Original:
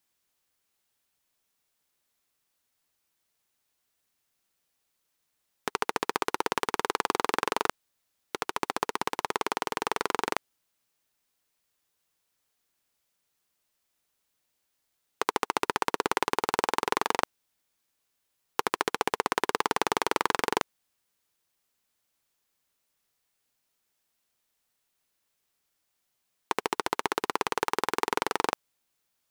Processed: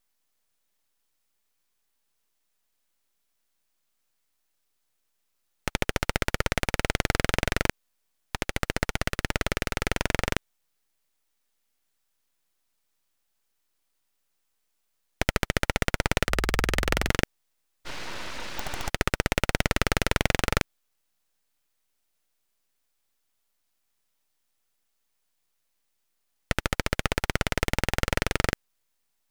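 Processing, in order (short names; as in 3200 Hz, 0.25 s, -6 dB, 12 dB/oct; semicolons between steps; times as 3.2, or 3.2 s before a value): 17.89–18.86 spectral repair 440–5600 Hz after; full-wave rectifier; 16.24–17.09 frequency shift -68 Hz; gain +3 dB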